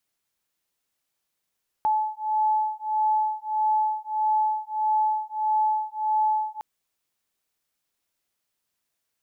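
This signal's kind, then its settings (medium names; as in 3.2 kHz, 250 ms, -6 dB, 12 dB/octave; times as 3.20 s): beating tones 861 Hz, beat 1.6 Hz, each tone -24.5 dBFS 4.76 s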